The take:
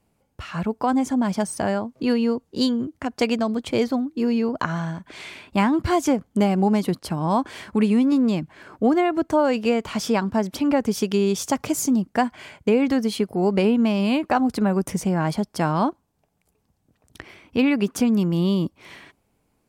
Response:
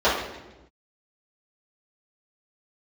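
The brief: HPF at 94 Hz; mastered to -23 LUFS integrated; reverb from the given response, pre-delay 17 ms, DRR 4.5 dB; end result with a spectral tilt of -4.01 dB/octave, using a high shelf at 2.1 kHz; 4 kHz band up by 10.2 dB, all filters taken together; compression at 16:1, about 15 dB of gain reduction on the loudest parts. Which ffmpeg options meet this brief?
-filter_complex "[0:a]highpass=94,highshelf=f=2100:g=6.5,equalizer=f=4000:t=o:g=7,acompressor=threshold=0.0398:ratio=16,asplit=2[s0][s1];[1:a]atrim=start_sample=2205,adelay=17[s2];[s1][s2]afir=irnorm=-1:irlink=0,volume=0.0562[s3];[s0][s3]amix=inputs=2:normalize=0,volume=2.66"

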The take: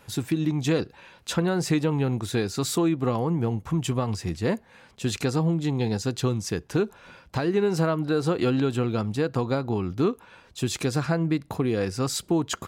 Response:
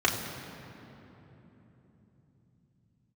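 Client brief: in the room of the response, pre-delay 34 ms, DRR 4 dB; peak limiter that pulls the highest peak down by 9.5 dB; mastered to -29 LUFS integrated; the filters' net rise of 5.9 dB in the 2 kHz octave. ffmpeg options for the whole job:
-filter_complex "[0:a]equalizer=f=2000:t=o:g=8,alimiter=limit=0.106:level=0:latency=1,asplit=2[s0][s1];[1:a]atrim=start_sample=2205,adelay=34[s2];[s1][s2]afir=irnorm=-1:irlink=0,volume=0.133[s3];[s0][s3]amix=inputs=2:normalize=0,volume=0.794"

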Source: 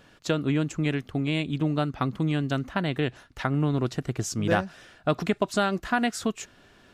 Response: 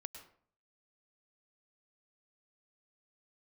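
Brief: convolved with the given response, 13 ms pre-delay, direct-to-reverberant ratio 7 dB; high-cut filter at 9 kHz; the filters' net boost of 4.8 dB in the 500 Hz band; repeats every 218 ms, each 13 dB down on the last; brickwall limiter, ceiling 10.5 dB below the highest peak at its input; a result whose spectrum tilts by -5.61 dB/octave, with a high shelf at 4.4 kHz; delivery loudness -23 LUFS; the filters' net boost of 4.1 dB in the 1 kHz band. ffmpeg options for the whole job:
-filter_complex "[0:a]lowpass=9000,equalizer=f=500:t=o:g=5,equalizer=f=1000:t=o:g=3.5,highshelf=f=4400:g=5.5,alimiter=limit=0.15:level=0:latency=1,aecho=1:1:218|436|654:0.224|0.0493|0.0108,asplit=2[s0][s1];[1:a]atrim=start_sample=2205,adelay=13[s2];[s1][s2]afir=irnorm=-1:irlink=0,volume=0.708[s3];[s0][s3]amix=inputs=2:normalize=0,volume=1.58"

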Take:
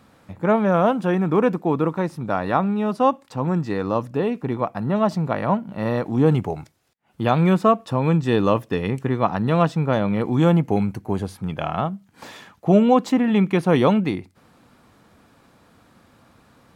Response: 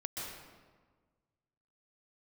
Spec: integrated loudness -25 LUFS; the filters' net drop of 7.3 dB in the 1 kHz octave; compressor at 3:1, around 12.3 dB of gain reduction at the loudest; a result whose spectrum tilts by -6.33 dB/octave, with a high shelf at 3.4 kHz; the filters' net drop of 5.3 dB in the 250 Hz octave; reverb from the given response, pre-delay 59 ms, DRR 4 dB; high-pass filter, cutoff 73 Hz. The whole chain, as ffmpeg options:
-filter_complex "[0:a]highpass=73,equalizer=f=250:t=o:g=-7,equalizer=f=1000:t=o:g=-9,highshelf=f=3400:g=-5,acompressor=threshold=0.0224:ratio=3,asplit=2[s0][s1];[1:a]atrim=start_sample=2205,adelay=59[s2];[s1][s2]afir=irnorm=-1:irlink=0,volume=0.531[s3];[s0][s3]amix=inputs=2:normalize=0,volume=2.66"

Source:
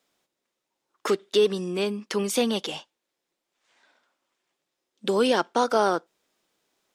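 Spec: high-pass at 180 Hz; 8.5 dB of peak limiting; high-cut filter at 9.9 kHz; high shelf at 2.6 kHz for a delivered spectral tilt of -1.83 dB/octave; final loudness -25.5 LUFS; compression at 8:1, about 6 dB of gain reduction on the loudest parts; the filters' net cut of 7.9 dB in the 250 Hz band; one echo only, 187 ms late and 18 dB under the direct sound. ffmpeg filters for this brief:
-af "highpass=180,lowpass=9900,equalizer=f=250:t=o:g=-9,highshelf=f=2600:g=8,acompressor=threshold=0.0708:ratio=8,alimiter=limit=0.112:level=0:latency=1,aecho=1:1:187:0.126,volume=1.88"

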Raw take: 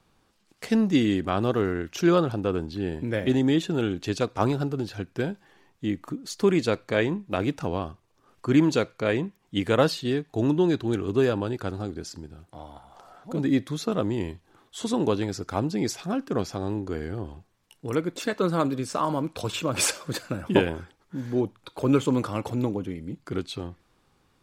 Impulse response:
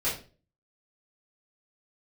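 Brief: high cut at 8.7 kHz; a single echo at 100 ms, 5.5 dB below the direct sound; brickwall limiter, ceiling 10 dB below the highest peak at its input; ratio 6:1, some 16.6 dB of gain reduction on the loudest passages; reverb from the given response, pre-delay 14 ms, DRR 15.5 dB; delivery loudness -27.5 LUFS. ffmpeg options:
-filter_complex "[0:a]lowpass=8700,acompressor=threshold=0.0224:ratio=6,alimiter=level_in=1.58:limit=0.0631:level=0:latency=1,volume=0.631,aecho=1:1:100:0.531,asplit=2[s0][s1];[1:a]atrim=start_sample=2205,adelay=14[s2];[s1][s2]afir=irnorm=-1:irlink=0,volume=0.0631[s3];[s0][s3]amix=inputs=2:normalize=0,volume=3.55"

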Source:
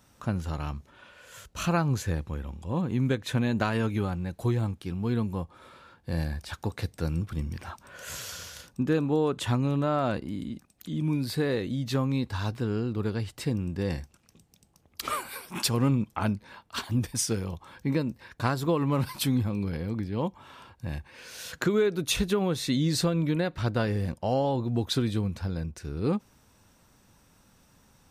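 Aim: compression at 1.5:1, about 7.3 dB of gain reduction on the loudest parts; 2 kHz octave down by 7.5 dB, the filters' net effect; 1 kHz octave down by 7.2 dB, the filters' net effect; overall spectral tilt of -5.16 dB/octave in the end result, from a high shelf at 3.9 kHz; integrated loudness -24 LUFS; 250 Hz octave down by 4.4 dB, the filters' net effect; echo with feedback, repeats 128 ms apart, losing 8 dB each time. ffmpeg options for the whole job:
-af "equalizer=f=250:t=o:g=-5.5,equalizer=f=1000:t=o:g=-7.5,equalizer=f=2000:t=o:g=-8.5,highshelf=f=3900:g=3.5,acompressor=threshold=0.00631:ratio=1.5,aecho=1:1:128|256|384|512|640:0.398|0.159|0.0637|0.0255|0.0102,volume=4.73"

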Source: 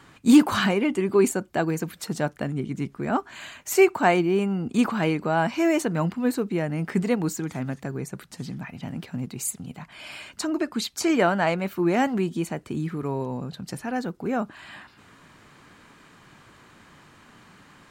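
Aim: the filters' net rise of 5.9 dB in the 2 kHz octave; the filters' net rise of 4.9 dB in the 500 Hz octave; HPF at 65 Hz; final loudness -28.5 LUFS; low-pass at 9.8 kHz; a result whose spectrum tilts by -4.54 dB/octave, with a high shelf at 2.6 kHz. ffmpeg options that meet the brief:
-af "highpass=65,lowpass=9800,equalizer=f=500:t=o:g=6.5,equalizer=f=2000:t=o:g=4,highshelf=f=2600:g=7,volume=0.422"

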